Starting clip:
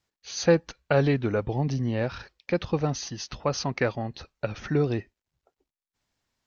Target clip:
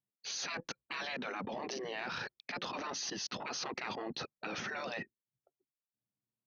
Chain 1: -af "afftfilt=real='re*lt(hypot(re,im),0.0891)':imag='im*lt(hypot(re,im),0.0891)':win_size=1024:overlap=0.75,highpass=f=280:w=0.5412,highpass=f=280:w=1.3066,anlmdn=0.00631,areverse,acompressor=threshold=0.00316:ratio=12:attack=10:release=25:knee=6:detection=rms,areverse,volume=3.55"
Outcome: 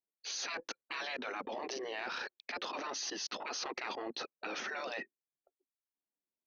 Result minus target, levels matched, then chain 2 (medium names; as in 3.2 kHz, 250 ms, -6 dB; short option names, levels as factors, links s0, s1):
125 Hz band -15.0 dB
-af "afftfilt=real='re*lt(hypot(re,im),0.0891)':imag='im*lt(hypot(re,im),0.0891)':win_size=1024:overlap=0.75,highpass=f=140:w=0.5412,highpass=f=140:w=1.3066,anlmdn=0.00631,areverse,acompressor=threshold=0.00316:ratio=12:attack=10:release=25:knee=6:detection=rms,areverse,volume=3.55"